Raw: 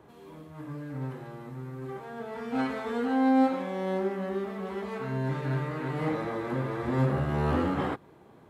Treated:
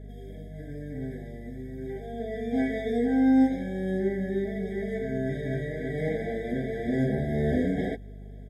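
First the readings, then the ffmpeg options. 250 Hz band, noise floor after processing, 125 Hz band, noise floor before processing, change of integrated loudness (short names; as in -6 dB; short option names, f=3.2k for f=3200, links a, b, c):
+3.0 dB, -42 dBFS, -1.0 dB, -55 dBFS, +2.0 dB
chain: -af "aecho=1:1:4.6:0.85,aeval=exprs='val(0)+0.00891*(sin(2*PI*50*n/s)+sin(2*PI*2*50*n/s)/2+sin(2*PI*3*50*n/s)/3+sin(2*PI*4*50*n/s)/4+sin(2*PI*5*50*n/s)/5)':c=same,afftfilt=real='re*eq(mod(floor(b*sr/1024/780),2),0)':imag='im*eq(mod(floor(b*sr/1024/780),2),0)':win_size=1024:overlap=0.75"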